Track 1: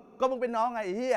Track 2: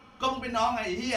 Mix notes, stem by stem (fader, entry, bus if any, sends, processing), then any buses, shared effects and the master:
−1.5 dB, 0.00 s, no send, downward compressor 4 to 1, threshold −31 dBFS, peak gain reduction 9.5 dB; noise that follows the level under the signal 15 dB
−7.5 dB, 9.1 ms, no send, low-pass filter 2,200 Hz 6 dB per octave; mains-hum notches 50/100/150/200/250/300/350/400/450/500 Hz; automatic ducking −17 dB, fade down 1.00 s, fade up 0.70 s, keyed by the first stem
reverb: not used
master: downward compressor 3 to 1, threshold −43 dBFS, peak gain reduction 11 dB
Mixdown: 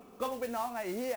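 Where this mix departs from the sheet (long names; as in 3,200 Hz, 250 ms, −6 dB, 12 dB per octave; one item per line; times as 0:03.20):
stem 2: polarity flipped
master: missing downward compressor 3 to 1, threshold −43 dBFS, peak gain reduction 11 dB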